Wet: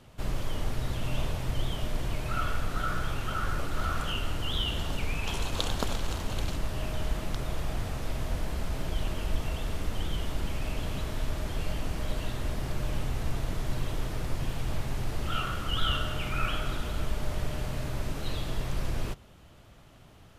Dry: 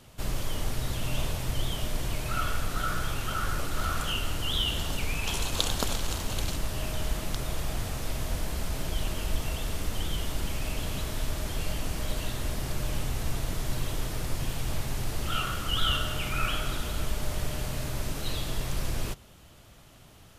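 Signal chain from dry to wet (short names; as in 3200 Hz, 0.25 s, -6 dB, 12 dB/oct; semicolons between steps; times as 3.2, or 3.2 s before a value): high shelf 4200 Hz -10 dB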